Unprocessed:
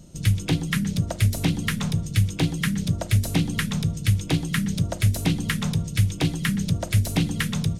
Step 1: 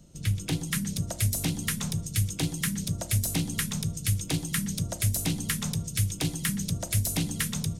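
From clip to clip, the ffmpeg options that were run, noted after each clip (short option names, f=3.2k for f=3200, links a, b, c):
-filter_complex "[0:a]bandreject=f=61.59:t=h:w=4,bandreject=f=123.18:t=h:w=4,bandreject=f=184.77:t=h:w=4,bandreject=f=246.36:t=h:w=4,bandreject=f=307.95:t=h:w=4,bandreject=f=369.54:t=h:w=4,bandreject=f=431.13:t=h:w=4,bandreject=f=492.72:t=h:w=4,bandreject=f=554.31:t=h:w=4,bandreject=f=615.9:t=h:w=4,bandreject=f=677.49:t=h:w=4,bandreject=f=739.08:t=h:w=4,bandreject=f=800.67:t=h:w=4,bandreject=f=862.26:t=h:w=4,bandreject=f=923.85:t=h:w=4,bandreject=f=985.44:t=h:w=4,bandreject=f=1.04703k:t=h:w=4,acrossover=split=190|5700[a][b][c];[c]dynaudnorm=f=310:g=3:m=12dB[d];[a][b][d]amix=inputs=3:normalize=0,volume=-6.5dB"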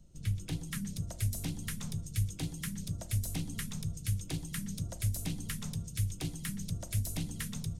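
-af "lowshelf=f=110:g=11.5,flanger=delay=0.9:depth=4.2:regen=77:speed=1.8:shape=triangular,volume=-6.5dB"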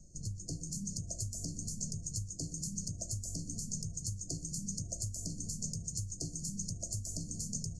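-af "acompressor=threshold=-38dB:ratio=6,afftfilt=real='re*(1-between(b*sr/4096,700,4200))':imag='im*(1-between(b*sr/4096,700,4200))':win_size=4096:overlap=0.75,lowpass=f=6.9k:t=q:w=4.9,volume=1dB"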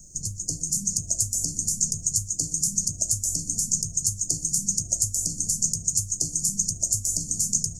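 -af "aexciter=amount=5.5:drive=3.8:freq=5.4k,volume=4.5dB"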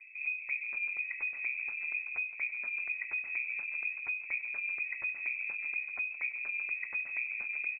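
-filter_complex "[0:a]asplit=2[a][b];[b]highpass=f=720:p=1,volume=12dB,asoftclip=type=tanh:threshold=-5.5dB[c];[a][c]amix=inputs=2:normalize=0,lowpass=f=1.3k:p=1,volume=-6dB,aecho=1:1:168|336|504|672|840:0.141|0.0805|0.0459|0.0262|0.0149,lowpass=f=2.2k:t=q:w=0.5098,lowpass=f=2.2k:t=q:w=0.6013,lowpass=f=2.2k:t=q:w=0.9,lowpass=f=2.2k:t=q:w=2.563,afreqshift=-2600,volume=4dB"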